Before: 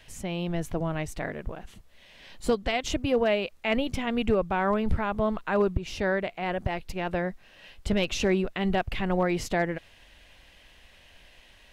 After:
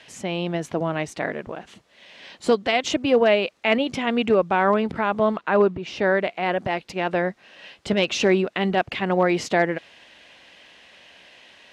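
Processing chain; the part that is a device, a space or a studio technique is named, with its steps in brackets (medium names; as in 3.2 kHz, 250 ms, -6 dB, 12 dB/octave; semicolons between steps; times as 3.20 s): public-address speaker with an overloaded transformer (transformer saturation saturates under 38 Hz; band-pass 210–6800 Hz); 5.38–6.15 s: treble shelf 5.5 kHz -11.5 dB; trim +7 dB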